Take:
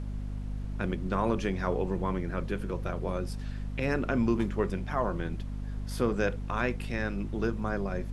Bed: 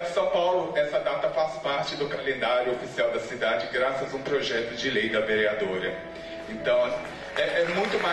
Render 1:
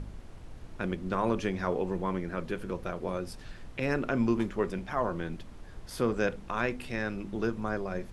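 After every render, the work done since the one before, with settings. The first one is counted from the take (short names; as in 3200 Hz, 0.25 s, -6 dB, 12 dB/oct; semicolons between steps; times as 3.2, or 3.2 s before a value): de-hum 50 Hz, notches 5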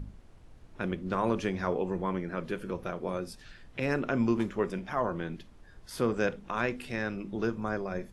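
noise print and reduce 8 dB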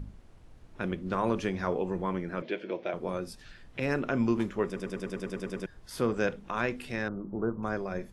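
2.42–2.94 speaker cabinet 300–5000 Hz, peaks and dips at 330 Hz +6 dB, 630 Hz +8 dB, 1200 Hz -9 dB, 2200 Hz +8 dB, 3300 Hz +5 dB; 4.66 stutter in place 0.10 s, 10 plays; 7.08–7.63 inverse Chebyshev band-stop 2300–9100 Hz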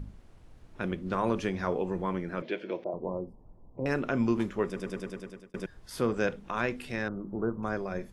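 2.84–3.86 elliptic low-pass 1000 Hz; 4.94–5.54 fade out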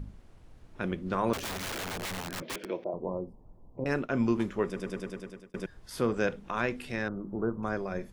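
1.33–2.65 wrapped overs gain 31 dB; 3.84–4.4 expander -30 dBFS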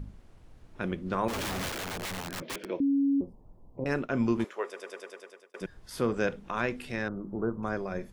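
1.28–1.69 Schmitt trigger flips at -44 dBFS; 2.8–3.21 bleep 278 Hz -22 dBFS; 4.44–5.61 HPF 460 Hz 24 dB/oct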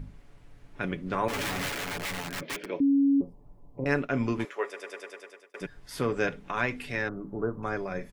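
bell 2100 Hz +5 dB 0.81 oct; comb 7 ms, depth 46%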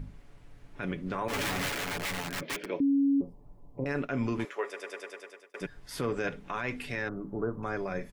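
limiter -21.5 dBFS, peak gain reduction 9.5 dB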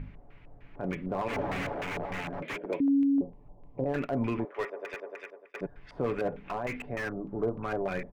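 LFO low-pass square 3.3 Hz 730–2400 Hz; slew limiter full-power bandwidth 37 Hz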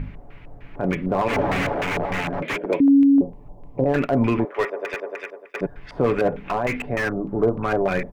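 gain +10.5 dB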